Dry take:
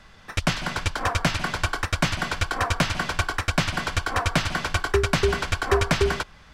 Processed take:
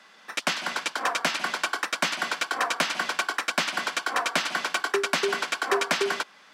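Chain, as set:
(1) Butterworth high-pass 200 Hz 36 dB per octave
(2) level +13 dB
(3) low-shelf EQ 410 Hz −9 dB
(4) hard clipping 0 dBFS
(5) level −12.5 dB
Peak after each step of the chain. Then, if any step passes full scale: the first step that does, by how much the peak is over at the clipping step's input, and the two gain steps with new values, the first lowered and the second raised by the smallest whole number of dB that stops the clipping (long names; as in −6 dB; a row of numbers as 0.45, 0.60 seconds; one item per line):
−7.0, +6.0, +3.5, 0.0, −12.5 dBFS
step 2, 3.5 dB
step 2 +9 dB, step 5 −8.5 dB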